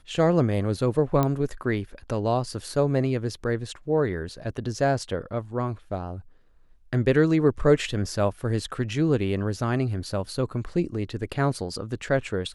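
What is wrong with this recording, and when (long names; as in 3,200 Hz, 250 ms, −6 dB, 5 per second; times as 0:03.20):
0:01.23: click −11 dBFS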